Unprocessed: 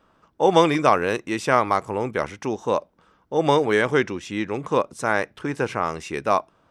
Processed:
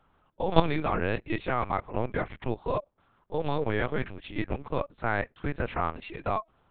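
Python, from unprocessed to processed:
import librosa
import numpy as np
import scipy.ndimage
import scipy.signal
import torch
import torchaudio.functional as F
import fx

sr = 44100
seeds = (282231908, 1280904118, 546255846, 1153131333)

y = fx.highpass(x, sr, hz=130.0, slope=6)
y = fx.level_steps(y, sr, step_db=13)
y = fx.lpc_vocoder(y, sr, seeds[0], excitation='pitch_kept', order=8)
y = y * 10.0 ** (-1.0 / 20.0)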